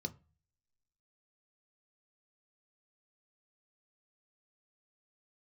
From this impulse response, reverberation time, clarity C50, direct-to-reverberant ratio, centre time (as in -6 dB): not exponential, 21.0 dB, 7.0 dB, 5 ms